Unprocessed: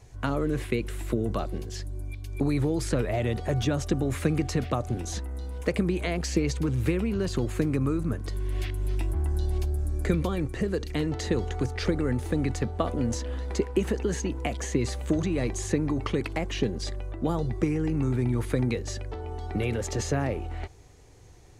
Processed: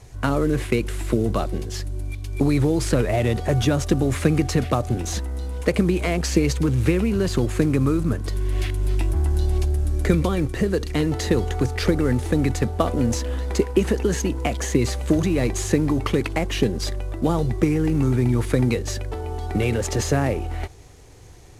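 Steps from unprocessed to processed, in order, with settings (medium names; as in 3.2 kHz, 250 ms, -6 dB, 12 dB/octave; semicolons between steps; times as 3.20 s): CVSD coder 64 kbps; trim +6.5 dB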